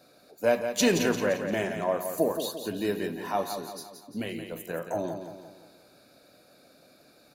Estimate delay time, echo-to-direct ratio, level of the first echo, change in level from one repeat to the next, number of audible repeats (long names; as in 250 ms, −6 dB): 173 ms, −7.0 dB, −8.0 dB, −6.5 dB, 5